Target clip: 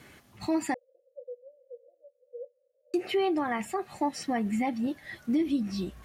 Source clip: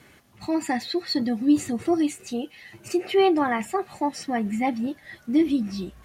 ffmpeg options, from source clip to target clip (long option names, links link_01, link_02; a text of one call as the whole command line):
ffmpeg -i in.wav -filter_complex "[0:a]alimiter=limit=-19.5dB:level=0:latency=1:release=361,asettb=1/sr,asplit=3[link_01][link_02][link_03];[link_01]atrim=end=0.744[link_04];[link_02]atrim=start=0.74:end=2.94,asetpts=PTS-STARTPTS,afade=type=in:duration=0.004:curve=qsin,afade=type=out:start_time=2.196:duration=0.004:curve=qsin,asuperpass=centerf=530:order=8:qfactor=5.6[link_05];[link_03]atrim=start=2.936[link_06];[link_04][link_05]acrossfade=duration=0.004:curve1=hsin:curve2=qsin[link_07];[link_07][link_06]acrossfade=duration=0.004:curve1=qsin:curve2=hsin" out.wav